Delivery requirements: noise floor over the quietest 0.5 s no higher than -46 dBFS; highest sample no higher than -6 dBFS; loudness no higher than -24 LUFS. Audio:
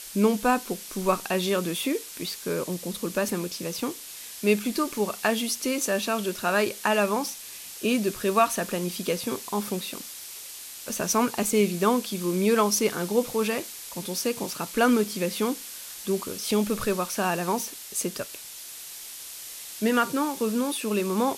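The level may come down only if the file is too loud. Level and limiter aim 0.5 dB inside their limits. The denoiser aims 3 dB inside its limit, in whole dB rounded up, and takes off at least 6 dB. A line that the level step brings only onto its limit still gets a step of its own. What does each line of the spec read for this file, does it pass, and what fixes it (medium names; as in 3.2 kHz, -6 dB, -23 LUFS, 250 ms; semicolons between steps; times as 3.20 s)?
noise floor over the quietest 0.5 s -41 dBFS: fail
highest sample -7.5 dBFS: pass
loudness -26.5 LUFS: pass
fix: noise reduction 8 dB, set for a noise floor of -41 dBFS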